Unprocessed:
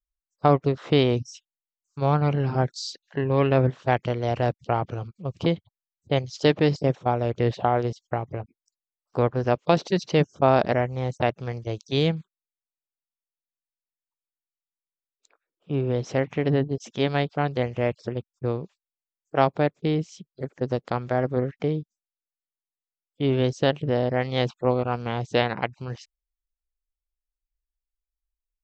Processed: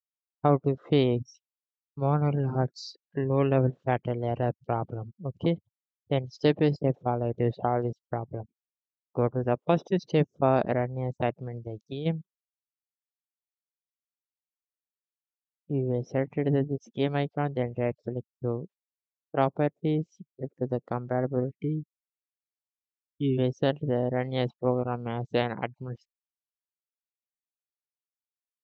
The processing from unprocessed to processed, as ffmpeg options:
-filter_complex "[0:a]asettb=1/sr,asplit=3[s0][s1][s2];[s0]atrim=end=9.214[s3];[s1]atrim=start=9.21:end=9.99,asetpts=PTS-STARTPTS,afade=t=in:d=0.004:c=qsin,afade=t=out:st=0.776:d=0.004:c=qsin,asuperstop=centerf=4300:order=4:qfactor=5.1[s4];[s2]atrim=start=9.986[s5];[s3][s4]acrossfade=d=0.004:c1=hsin:c2=qsin[s6];[s6][s5]acrossfade=d=0.004:c1=qsin:c2=hsin,asplit=3[s7][s8][s9];[s7]afade=t=out:st=11.44:d=0.02[s10];[s8]acompressor=threshold=0.0447:ratio=10:attack=3.2:release=140:knee=1:detection=peak,afade=t=in:st=11.44:d=0.02,afade=t=out:st=12.05:d=0.02[s11];[s9]afade=t=in:st=12.05:d=0.02[s12];[s10][s11][s12]amix=inputs=3:normalize=0,asplit=3[s13][s14][s15];[s13]afade=t=out:st=21.49:d=0.02[s16];[s14]asuperstop=centerf=930:order=12:qfactor=0.54,afade=t=in:st=21.49:d=0.02,afade=t=out:st=23.37:d=0.02[s17];[s15]afade=t=in:st=23.37:d=0.02[s18];[s16][s17][s18]amix=inputs=3:normalize=0,agate=range=0.0224:threshold=0.00398:ratio=3:detection=peak,afftdn=nr=20:nf=-38,equalizer=f=240:w=0.45:g=5,volume=0.447"

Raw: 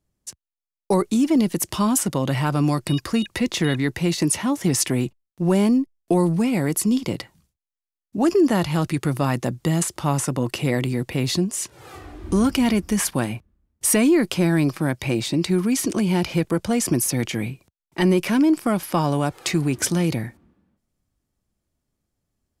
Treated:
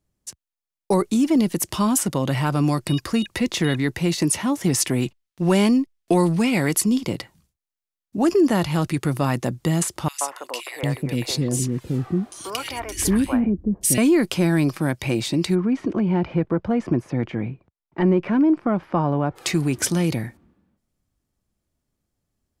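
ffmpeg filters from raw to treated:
-filter_complex "[0:a]asettb=1/sr,asplit=3[s0][s1][s2];[s0]atrim=end=5.024[s3];[s1]atrim=start=5.02:end=6.81,asetpts=PTS-STARTPTS,afade=t=in:d=0.004:c=qsin,afade=t=out:st=1.786:d=0.004:c=qsin,equalizer=f=3100:w=0.4:g=7.5[s4];[s2]atrim=start=6.806[s5];[s3][s4]acrossfade=d=0.004:c1=hsin:c2=qsin[s6];[s6][s5]acrossfade=d=0.004:c1=qsin:c2=hsin,asettb=1/sr,asplit=3[s7][s8][s9];[s7]atrim=end=10.084[s10];[s8]atrim=start=10.08:end=13.98,asetpts=PTS-STARTPTS,afade=t=in:d=0.004:c=qsin,afade=t=out:st=3.896:d=0.004:c=qsin,acrossover=split=490|2000[s11][s12][s13];[s12]adelay=130[s14];[s11]adelay=750[s15];[s15][s14][s13]amix=inputs=3:normalize=0,atrim=end_sample=171990[s16];[s9]atrim=start=13.976[s17];[s10][s16]acrossfade=d=0.004:c1=hsin:c2=qsin[s18];[s18][s17]acrossfade=d=0.004:c1=qsin:c2=hsin,asplit=3[s19][s20][s21];[s19]afade=t=out:st=15.54:d=0.02[s22];[s20]lowpass=1500,afade=t=in:st=15.54:d=0.02,afade=t=out:st=19.35:d=0.02[s23];[s21]afade=t=in:st=19.35:d=0.02[s24];[s22][s23][s24]amix=inputs=3:normalize=0"

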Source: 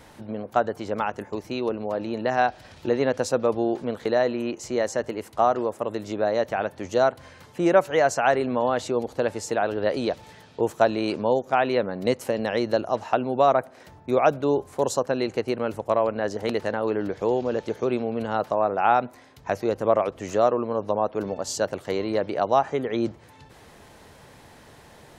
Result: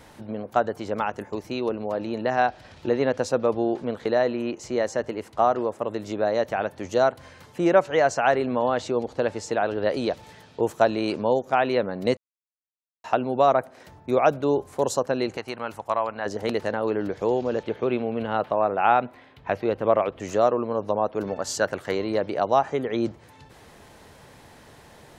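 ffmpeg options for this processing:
-filter_complex "[0:a]asettb=1/sr,asplit=3[s0][s1][s2];[s0]atrim=end=2.224[s3];[s1]atrim=start=2.22:end=6.03,asetpts=PTS-STARTPTS,afade=t=in:d=0.004:c=qsin,afade=t=out:st=3.806:d=0.004:c=qsin,highshelf=f=9800:g=-12[s4];[s2]atrim=start=6.026[s5];[s3][s4]acrossfade=d=0.004:c1=hsin:c2=qsin[s6];[s6][s5]acrossfade=d=0.004:c1=qsin:c2=hsin,asettb=1/sr,asplit=3[s7][s8][s9];[s7]atrim=end=7.644[s10];[s8]atrim=start=7.64:end=9.75,asetpts=PTS-STARTPTS,afade=t=in:d=0.004:c=qsin,afade=t=out:st=2.106:d=0.004:c=qsin,lowpass=6800[s11];[s9]atrim=start=9.746[s12];[s10][s11]acrossfade=d=0.004:c1=hsin:c2=qsin[s13];[s13][s12]acrossfade=d=0.004:c1=qsin:c2=hsin,asettb=1/sr,asplit=3[s14][s15][s16];[s14]atrim=end=15.374[s17];[s15]atrim=start=15.37:end=16.26,asetpts=PTS-STARTPTS,afade=t=in:d=0.004:c=qsin,afade=t=out:st=0.886:d=0.004:c=qsin,lowshelf=f=650:t=q:w=1.5:g=-7.5[s18];[s16]atrim=start=16.256[s19];[s17][s18]acrossfade=d=0.004:c1=hsin:c2=qsin[s20];[s20][s19]acrossfade=d=0.004:c1=qsin:c2=hsin,asettb=1/sr,asplit=3[s21][s22][s23];[s21]atrim=end=17.634[s24];[s22]atrim=start=17.63:end=20.2,asetpts=PTS-STARTPTS,afade=t=in:d=0.004:c=qsin,afade=t=out:st=2.566:d=0.004:c=qsin,highshelf=f=4500:t=q:w=1.5:g=-12[s25];[s23]atrim=start=20.196[s26];[s24][s25]acrossfade=d=0.004:c1=hsin:c2=qsin[s27];[s27][s26]acrossfade=d=0.004:c1=qsin:c2=hsin,asettb=1/sr,asplit=3[s28][s29][s30];[s28]atrim=end=21.274[s31];[s29]atrim=start=21.27:end=21.95,asetpts=PTS-STARTPTS,afade=t=in:d=0.004:c=qsin,afade=t=out:st=0.676:d=0.004:c=qsin,equalizer=f=1600:t=o:w=0.93:g=7.5[s32];[s30]atrim=start=21.946[s33];[s31][s32]acrossfade=d=0.004:c1=hsin:c2=qsin[s34];[s34][s33]acrossfade=d=0.004:c1=qsin:c2=hsin,asplit=3[s35][s36][s37];[s35]atrim=end=12.17,asetpts=PTS-STARTPTS,afade=t=out:st=12.166:d=0.004:c=hsin[s38];[s36]atrim=start=12.17:end=13.04,asetpts=PTS-STARTPTS,volume=0[s39];[s37]atrim=start=13.04,asetpts=PTS-STARTPTS,afade=t=in:d=0.004:c=hsin[s40];[s38][s39][s40]concat=n=3:v=0:a=1"

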